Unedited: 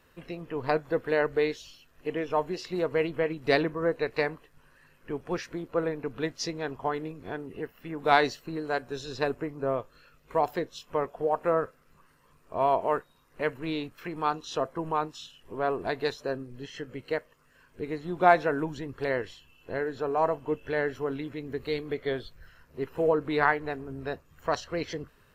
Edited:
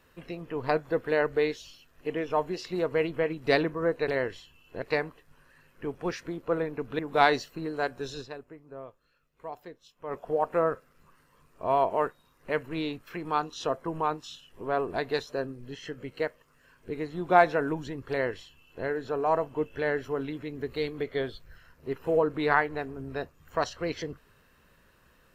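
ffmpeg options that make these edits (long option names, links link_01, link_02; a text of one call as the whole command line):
ffmpeg -i in.wav -filter_complex "[0:a]asplit=6[link_01][link_02][link_03][link_04][link_05][link_06];[link_01]atrim=end=4.082[link_07];[link_02]atrim=start=19.018:end=19.762[link_08];[link_03]atrim=start=4.078:end=6.252[link_09];[link_04]atrim=start=7.898:end=9.52,asetpts=PTS-STARTPTS,afade=type=out:start_time=1.212:duration=0.41:curve=exp:silence=0.199526[link_10];[link_05]atrim=start=9.52:end=10.64,asetpts=PTS-STARTPTS,volume=-14dB[link_11];[link_06]atrim=start=10.64,asetpts=PTS-STARTPTS,afade=type=in:duration=0.41:curve=exp:silence=0.199526[link_12];[link_07][link_08]acrossfade=duration=0.004:curve1=hsin:curve2=hsin[link_13];[link_13][link_09]acrossfade=duration=0.004:curve1=hsin:curve2=hsin[link_14];[link_10][link_11][link_12]concat=n=3:v=0:a=1[link_15];[link_14][link_15]acrossfade=duration=0.004:curve1=hsin:curve2=hsin" out.wav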